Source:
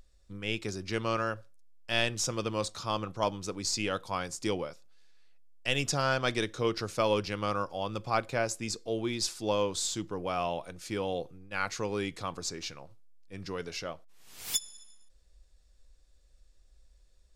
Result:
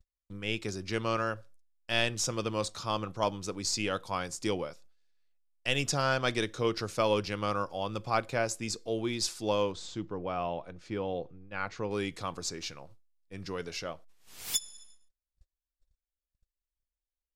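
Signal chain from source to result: gate -52 dBFS, range -33 dB; 9.72–11.91 tape spacing loss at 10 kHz 22 dB

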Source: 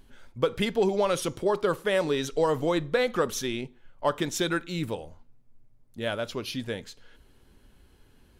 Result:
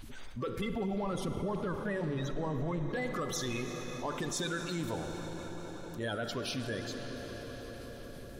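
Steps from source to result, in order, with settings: bin magnitudes rounded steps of 30 dB; 0.61–2.89 tone controls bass +10 dB, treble -12 dB; limiter -22.5 dBFS, peak gain reduction 11 dB; analogue delay 0.186 s, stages 2048, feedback 82%, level -17 dB; reverb RT60 4.3 s, pre-delay 37 ms, DRR 8.5 dB; fast leveller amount 50%; gain -6 dB

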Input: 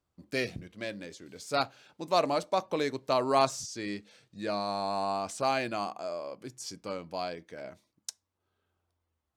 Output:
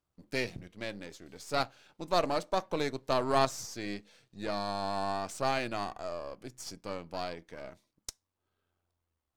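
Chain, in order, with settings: half-wave gain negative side -7 dB

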